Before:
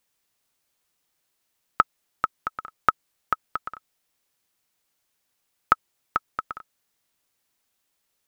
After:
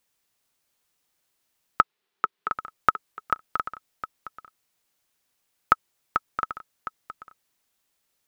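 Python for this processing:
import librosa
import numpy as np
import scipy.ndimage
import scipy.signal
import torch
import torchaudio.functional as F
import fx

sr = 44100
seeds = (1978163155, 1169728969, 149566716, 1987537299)

y = fx.cabinet(x, sr, low_hz=160.0, low_slope=24, high_hz=4300.0, hz=(270.0, 410.0, 580.0), db=(-9, 9, -7), at=(1.81, 2.52))
y = y + 10.0 ** (-10.5 / 20.0) * np.pad(y, (int(711 * sr / 1000.0), 0))[:len(y)]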